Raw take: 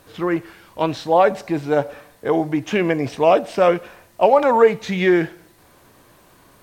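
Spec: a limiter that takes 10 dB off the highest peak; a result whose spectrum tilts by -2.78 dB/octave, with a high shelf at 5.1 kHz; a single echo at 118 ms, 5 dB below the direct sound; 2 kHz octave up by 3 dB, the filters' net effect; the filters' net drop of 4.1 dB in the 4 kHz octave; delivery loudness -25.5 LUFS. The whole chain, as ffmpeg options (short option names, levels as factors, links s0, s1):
-af "equalizer=f=2000:t=o:g=6,equalizer=f=4000:t=o:g=-6.5,highshelf=f=5100:g=-6.5,alimiter=limit=0.251:level=0:latency=1,aecho=1:1:118:0.562,volume=0.708"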